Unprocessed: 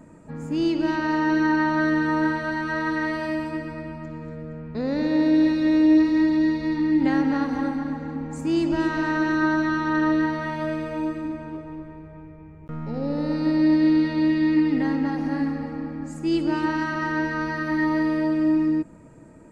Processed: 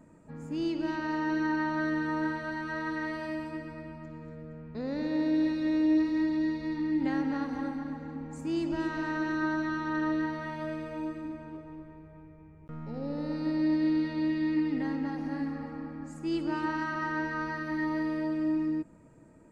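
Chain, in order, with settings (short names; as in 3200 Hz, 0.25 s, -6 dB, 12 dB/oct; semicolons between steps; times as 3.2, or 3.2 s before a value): 15.52–17.58 bell 1200 Hz +4.5 dB 0.97 oct; gain -8.5 dB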